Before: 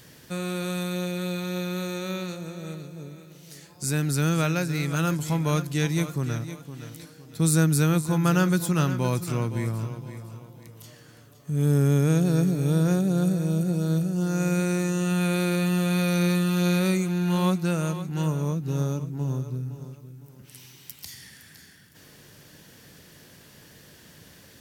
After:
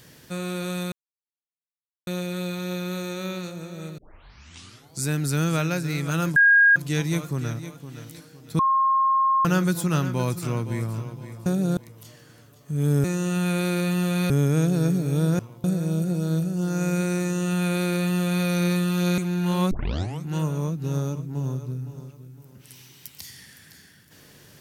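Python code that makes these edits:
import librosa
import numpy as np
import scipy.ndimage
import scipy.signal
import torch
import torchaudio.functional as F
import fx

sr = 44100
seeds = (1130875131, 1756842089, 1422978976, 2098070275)

y = fx.edit(x, sr, fx.insert_silence(at_s=0.92, length_s=1.15),
    fx.tape_start(start_s=2.83, length_s=1.05),
    fx.bleep(start_s=5.21, length_s=0.4, hz=1630.0, db=-12.0),
    fx.bleep(start_s=7.44, length_s=0.86, hz=1070.0, db=-17.0),
    fx.swap(start_s=10.31, length_s=0.25, other_s=12.92, other_length_s=0.31),
    fx.duplicate(start_s=14.79, length_s=1.26, to_s=11.83),
    fx.cut(start_s=16.77, length_s=0.25),
    fx.tape_start(start_s=17.55, length_s=0.53), tone=tone)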